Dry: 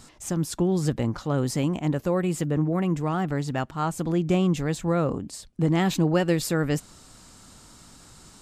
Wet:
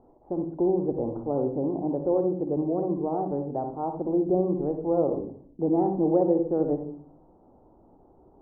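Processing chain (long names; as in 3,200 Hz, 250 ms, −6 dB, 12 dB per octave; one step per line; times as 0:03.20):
Chebyshev low-pass filter 830 Hz, order 4
low shelf with overshoot 250 Hz −10.5 dB, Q 1.5
on a send: convolution reverb RT60 0.50 s, pre-delay 47 ms, DRR 7 dB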